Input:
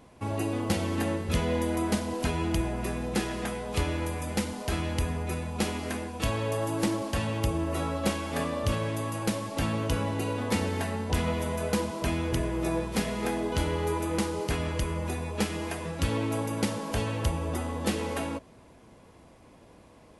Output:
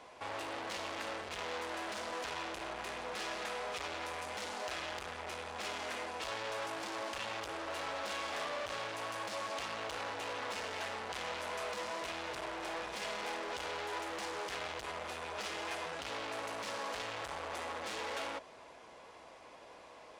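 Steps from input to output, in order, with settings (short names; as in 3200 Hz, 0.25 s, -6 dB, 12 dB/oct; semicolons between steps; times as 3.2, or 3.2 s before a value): hard clip -39.5 dBFS, distortion -3 dB; three-band isolator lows -21 dB, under 470 Hz, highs -18 dB, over 7400 Hz; gain +5 dB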